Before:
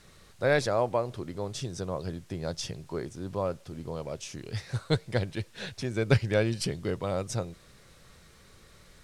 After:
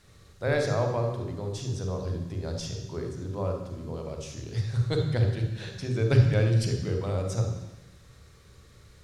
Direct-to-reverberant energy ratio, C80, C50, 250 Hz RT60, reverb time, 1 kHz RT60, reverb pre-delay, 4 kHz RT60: 2.5 dB, 7.0 dB, 4.0 dB, 1.1 s, 1.0 s, 1.2 s, 31 ms, 1.2 s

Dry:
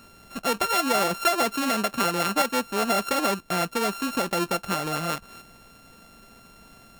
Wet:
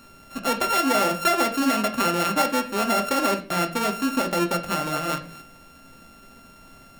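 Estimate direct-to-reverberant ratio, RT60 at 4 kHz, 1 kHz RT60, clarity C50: 4.0 dB, 0.35 s, 0.35 s, 12.0 dB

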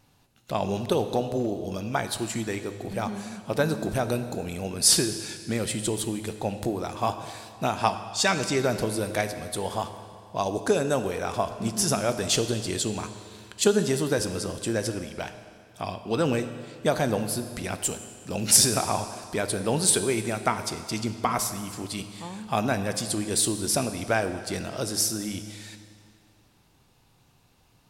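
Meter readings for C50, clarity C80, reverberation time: 10.0 dB, 11.0 dB, 2.2 s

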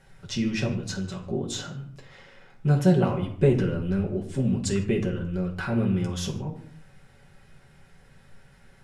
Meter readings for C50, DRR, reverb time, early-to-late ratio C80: 9.5 dB, -2.5 dB, 0.65 s, 13.0 dB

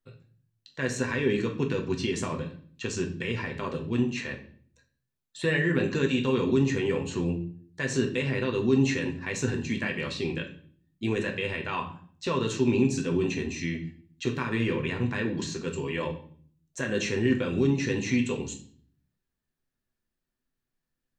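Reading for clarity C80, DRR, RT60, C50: 15.5 dB, 1.5 dB, 0.50 s, 11.0 dB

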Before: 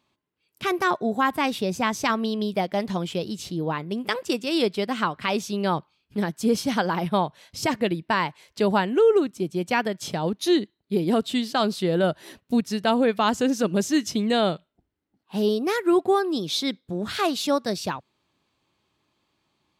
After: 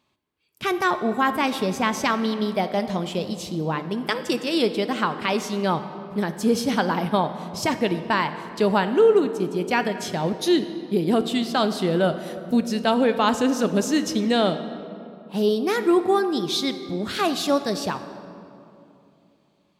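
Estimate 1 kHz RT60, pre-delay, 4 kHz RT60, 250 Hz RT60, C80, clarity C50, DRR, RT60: 2.6 s, 4 ms, 1.6 s, 3.4 s, 11.5 dB, 11.0 dB, 9.5 dB, 2.8 s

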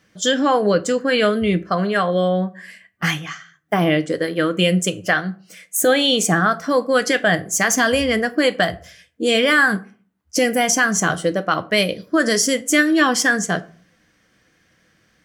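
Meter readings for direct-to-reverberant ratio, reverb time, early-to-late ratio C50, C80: 10.0 dB, 0.45 s, 20.0 dB, 24.5 dB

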